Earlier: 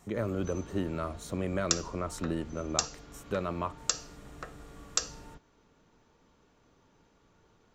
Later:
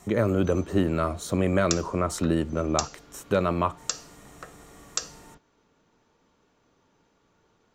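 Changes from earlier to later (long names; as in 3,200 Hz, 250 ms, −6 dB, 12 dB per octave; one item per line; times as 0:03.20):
speech +9.0 dB
background: add low-shelf EQ 100 Hz −8 dB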